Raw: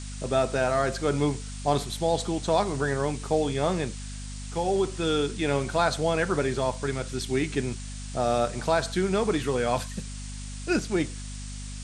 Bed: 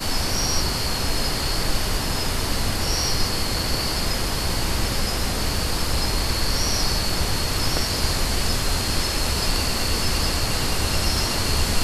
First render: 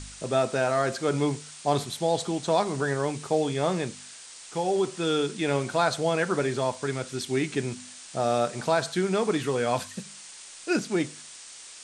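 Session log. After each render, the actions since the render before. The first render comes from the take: de-hum 50 Hz, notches 5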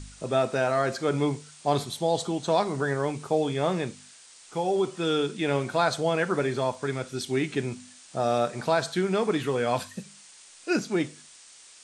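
noise print and reduce 6 dB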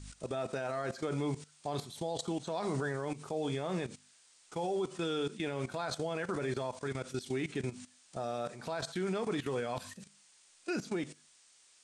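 level held to a coarse grid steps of 16 dB; peak limiter -26 dBFS, peak gain reduction 6 dB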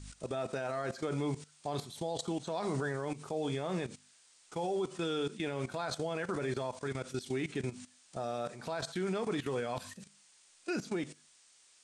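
no audible change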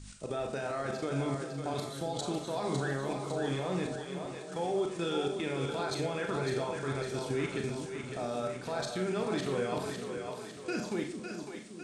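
two-band feedback delay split 360 Hz, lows 395 ms, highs 554 ms, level -6 dB; Schroeder reverb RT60 0.36 s, combs from 29 ms, DRR 4 dB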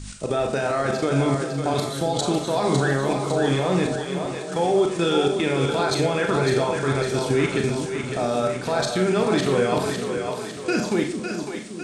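trim +12 dB

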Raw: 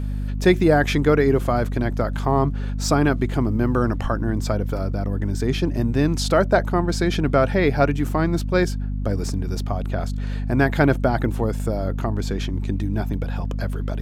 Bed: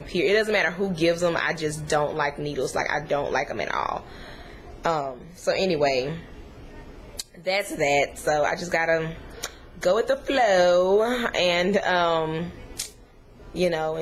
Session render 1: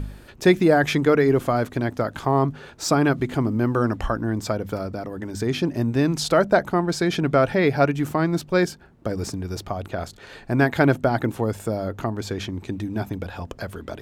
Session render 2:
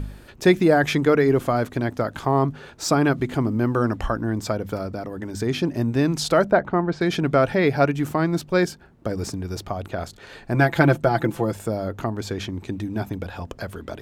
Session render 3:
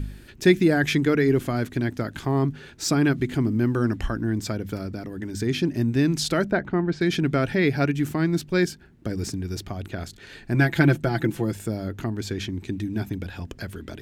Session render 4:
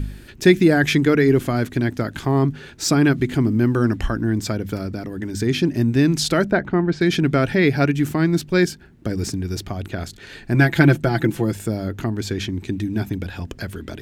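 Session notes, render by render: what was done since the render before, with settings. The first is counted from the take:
de-hum 50 Hz, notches 5
6.51–7.01 s: low-pass 2.4 kHz; 10.54–11.54 s: comb 5.9 ms
high-order bell 780 Hz -9 dB
trim +4.5 dB; peak limiter -2 dBFS, peak gain reduction 1 dB

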